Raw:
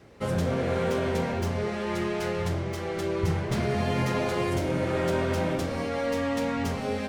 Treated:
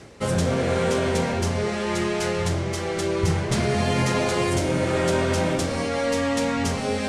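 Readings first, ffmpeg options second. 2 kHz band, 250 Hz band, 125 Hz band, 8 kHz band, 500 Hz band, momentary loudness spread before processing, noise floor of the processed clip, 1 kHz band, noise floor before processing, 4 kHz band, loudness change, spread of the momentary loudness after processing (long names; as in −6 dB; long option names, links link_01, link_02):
+5.5 dB, +4.0 dB, +4.0 dB, +11.5 dB, +4.0 dB, 3 LU, −28 dBFS, +4.5 dB, −32 dBFS, +8.0 dB, +4.5 dB, 3 LU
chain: -af "lowpass=frequency=9200:width=0.5412,lowpass=frequency=9200:width=1.3066,aemphasis=mode=production:type=50fm,areverse,acompressor=mode=upward:threshold=-29dB:ratio=2.5,areverse,volume=4.5dB"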